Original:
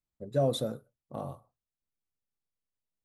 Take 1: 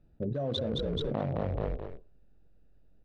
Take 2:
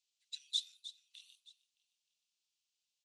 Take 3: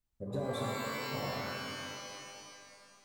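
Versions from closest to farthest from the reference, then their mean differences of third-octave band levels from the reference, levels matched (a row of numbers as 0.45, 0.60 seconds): 1, 3, 2; 9.0, 13.5, 21.0 decibels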